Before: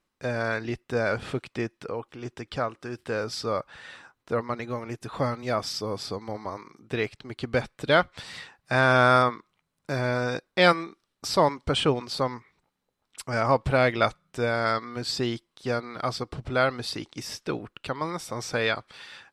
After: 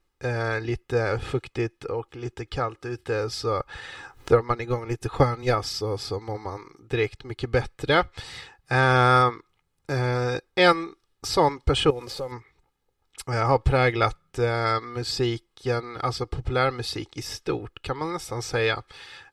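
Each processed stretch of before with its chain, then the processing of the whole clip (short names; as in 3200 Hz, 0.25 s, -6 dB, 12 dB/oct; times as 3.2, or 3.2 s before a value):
3.6–5.55 transient shaper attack +8 dB, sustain -1 dB + upward compressor, threshold -33 dBFS
11.9–12.32 CVSD 64 kbps + compressor 16:1, threshold -33 dBFS + bell 540 Hz +11 dB 0.38 oct
whole clip: de-esser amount 40%; low shelf 110 Hz +11 dB; comb 2.4 ms, depth 61%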